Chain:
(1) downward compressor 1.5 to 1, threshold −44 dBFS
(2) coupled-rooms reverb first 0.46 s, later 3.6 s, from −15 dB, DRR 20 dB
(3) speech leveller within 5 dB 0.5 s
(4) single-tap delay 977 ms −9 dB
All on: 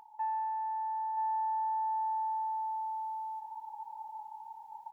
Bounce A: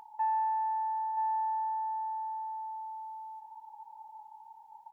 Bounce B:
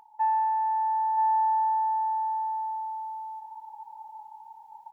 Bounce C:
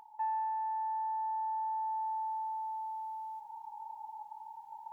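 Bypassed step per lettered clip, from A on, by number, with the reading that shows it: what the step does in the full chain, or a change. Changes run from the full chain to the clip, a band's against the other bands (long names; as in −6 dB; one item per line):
3, change in crest factor +3.5 dB
1, average gain reduction 3.0 dB
4, change in crest factor +2.0 dB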